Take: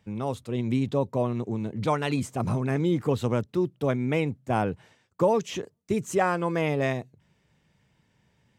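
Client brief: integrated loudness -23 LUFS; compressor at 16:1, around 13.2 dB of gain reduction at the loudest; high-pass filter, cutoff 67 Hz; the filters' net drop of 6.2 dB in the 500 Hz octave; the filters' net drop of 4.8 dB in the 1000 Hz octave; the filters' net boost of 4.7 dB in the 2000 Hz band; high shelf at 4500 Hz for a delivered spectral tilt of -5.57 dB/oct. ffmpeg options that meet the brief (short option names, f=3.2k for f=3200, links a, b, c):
-af "highpass=67,equalizer=f=500:t=o:g=-7,equalizer=f=1k:t=o:g=-5.5,equalizer=f=2k:t=o:g=9,highshelf=f=4.5k:g=-6,acompressor=threshold=-35dB:ratio=16,volume=17.5dB"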